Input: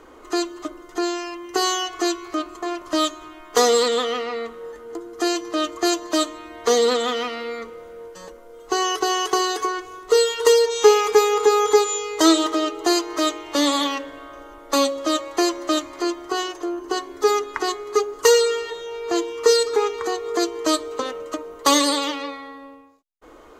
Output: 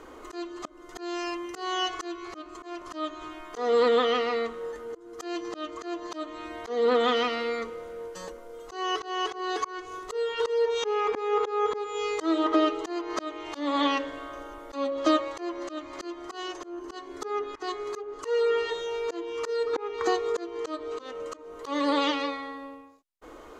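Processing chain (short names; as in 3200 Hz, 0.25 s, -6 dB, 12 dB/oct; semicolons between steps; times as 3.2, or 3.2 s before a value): treble ducked by the level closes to 2100 Hz, closed at -16 dBFS; auto swell 0.313 s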